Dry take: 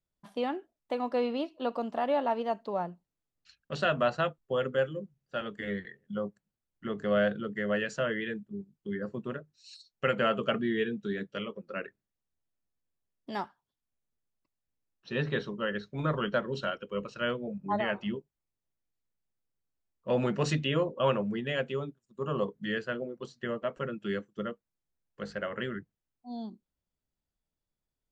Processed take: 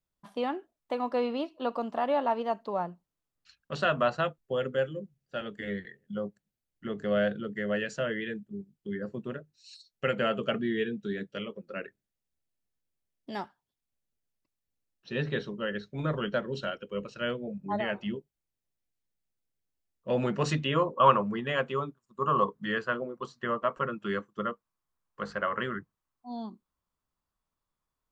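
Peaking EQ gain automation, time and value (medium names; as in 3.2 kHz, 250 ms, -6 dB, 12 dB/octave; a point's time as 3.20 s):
peaking EQ 1.1 kHz 0.66 oct
4.02 s +4 dB
4.55 s -4.5 dB
20.08 s -4.5 dB
20.36 s +3 dB
20.99 s +14.5 dB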